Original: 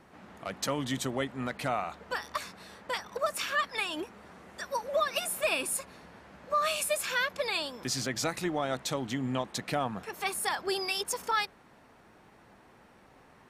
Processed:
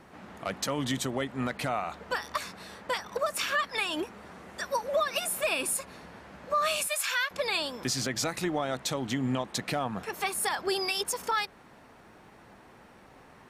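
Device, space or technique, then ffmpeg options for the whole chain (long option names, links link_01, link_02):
clipper into limiter: -filter_complex "[0:a]asettb=1/sr,asplit=3[link_01][link_02][link_03];[link_01]atrim=end=6.874[link_04];[link_02]atrim=start=6.87:end=7.31,asetpts=PTS-STARTPTS,afade=type=in:duration=0.004:curve=qsin,afade=type=out:start_time=0.436:duration=0.004:curve=qsin,highpass=970[link_05];[link_03]atrim=start=7.306[link_06];[link_04][link_05]acrossfade=duration=0.004:curve1=hsin:curve2=qsin[link_07];[link_07][link_06]acrossfade=duration=0.004:curve1=qsin:curve2=hsin,asoftclip=type=hard:threshold=-18.5dB,alimiter=limit=-23dB:level=0:latency=1:release=167,volume=4dB"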